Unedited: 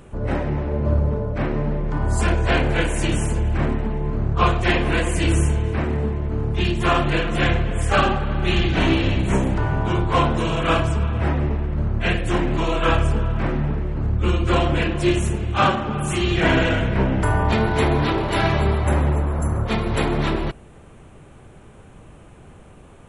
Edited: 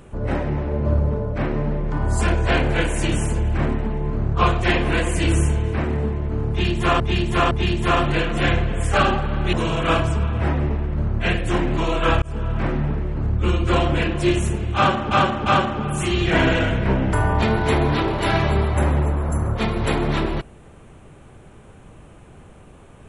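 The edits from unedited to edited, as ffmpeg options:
-filter_complex "[0:a]asplit=7[a][b][c][d][e][f][g];[a]atrim=end=7.002[h];[b]atrim=start=6.488:end=7.002[i];[c]atrim=start=6.488:end=8.512[j];[d]atrim=start=10.328:end=13.02,asetpts=PTS-STARTPTS,afade=t=out:st=2.688:d=0.004:c=hsin[k];[e]atrim=start=13.02:end=15.912,asetpts=PTS-STARTPTS,afade=t=in:d=0.41:c=qsin[l];[f]atrim=start=15.558:end=15.912[m];[g]atrim=start=15.558[n];[h][i]acrossfade=d=0.004:c1=hsin:c2=hsin[o];[o][j]acrossfade=d=0.004:c1=hsin:c2=hsin[p];[k][l]concat=n=2:v=0:a=1[q];[p][q]acrossfade=d=0.004:c1=hsin:c2=hsin[r];[r][m]acrossfade=d=0.004:c1=hsin:c2=hsin[s];[s][n]acrossfade=d=0.004:c1=hsin:c2=hsin"

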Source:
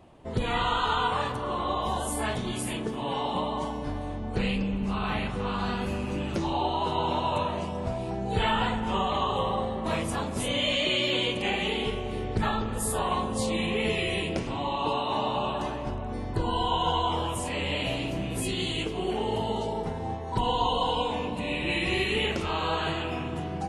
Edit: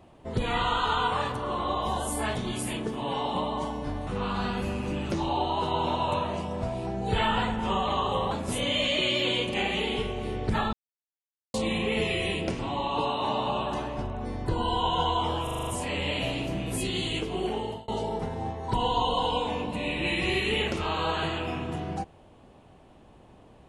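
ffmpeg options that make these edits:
-filter_complex "[0:a]asplit=12[a][b][c][d][e][f][g][h][i][j][k][l];[a]atrim=end=4.072[m];[b]atrim=start=5.308:end=9.552[n];[c]atrim=start=10.188:end=12.61,asetpts=PTS-STARTPTS,afade=t=out:st=2.418:d=0.004:c=hsin[o];[d]atrim=start=12.61:end=13.42,asetpts=PTS-STARTPTS,volume=0[p];[e]atrim=start=13.42:end=17.352,asetpts=PTS-STARTPTS,afade=t=in:d=0.004:c=hsin[q];[f]atrim=start=17.308:end=17.352[r];[g]atrim=start=17.308:end=17.352[s];[h]atrim=start=17.308:end=17.352[t];[i]atrim=start=17.308:end=17.352[u];[j]atrim=start=17.308:end=17.352[v];[k]atrim=start=17.308:end=19.52,asetpts=PTS-STARTPTS,afade=t=out:st=1.702:d=0.51:c=qsin[w];[l]atrim=start=19.52,asetpts=PTS-STARTPTS,afade=t=in:d=0.004:c=hsin[x];[m][n]acrossfade=d=0.004:c1=hsin:c2=hsin[y];[o][p][q]concat=n=3:v=0:a=1[z];[y][z]acrossfade=d=0.004:c1=hsin:c2=hsin[aa];[aa][r]acrossfade=d=0.004:c1=hsin:c2=hsin[ab];[ab][s]acrossfade=d=0.004:c1=hsin:c2=hsin[ac];[ac][t]acrossfade=d=0.004:c1=hsin:c2=hsin[ad];[ad][u]acrossfade=d=0.004:c1=hsin:c2=hsin[ae];[ae][v]acrossfade=d=0.004:c1=hsin:c2=hsin[af];[w][x]concat=n=2:v=0:a=1[ag];[af][ag]acrossfade=d=0.004:c1=hsin:c2=hsin"

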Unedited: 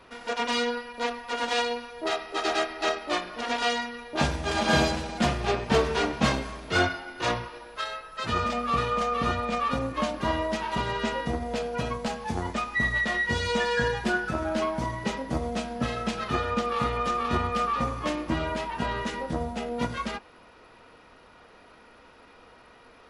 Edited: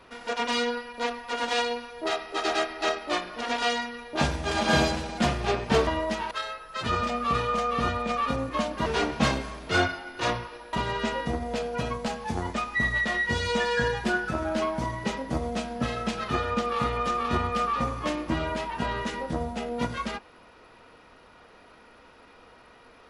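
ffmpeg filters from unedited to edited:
-filter_complex "[0:a]asplit=5[a][b][c][d][e];[a]atrim=end=5.872[f];[b]atrim=start=10.288:end=10.732[g];[c]atrim=start=7.738:end=10.292[h];[d]atrim=start=5.868:end=7.742[i];[e]atrim=start=10.728[j];[f][g]acrossfade=d=0.004:c1=hsin:c2=hsin[k];[k][h]acrossfade=d=0.004:c1=hsin:c2=hsin[l];[l][i]acrossfade=d=0.004:c1=hsin:c2=hsin[m];[m][j]acrossfade=d=0.004:c1=hsin:c2=hsin"

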